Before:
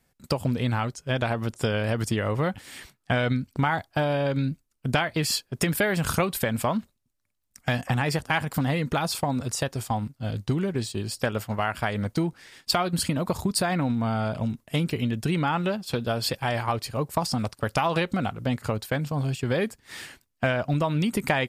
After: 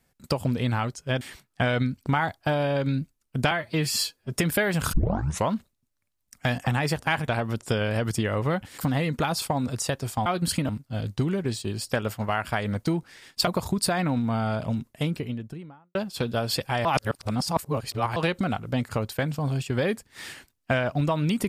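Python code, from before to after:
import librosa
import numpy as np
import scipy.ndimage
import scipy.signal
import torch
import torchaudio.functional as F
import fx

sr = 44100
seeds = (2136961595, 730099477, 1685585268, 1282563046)

y = fx.studio_fade_out(x, sr, start_s=14.48, length_s=1.2)
y = fx.edit(y, sr, fx.move(start_s=1.21, length_s=1.5, to_s=8.51),
    fx.stretch_span(start_s=5.01, length_s=0.54, factor=1.5),
    fx.tape_start(start_s=6.16, length_s=0.55),
    fx.move(start_s=12.77, length_s=0.43, to_s=9.99),
    fx.reverse_span(start_s=16.58, length_s=1.31), tone=tone)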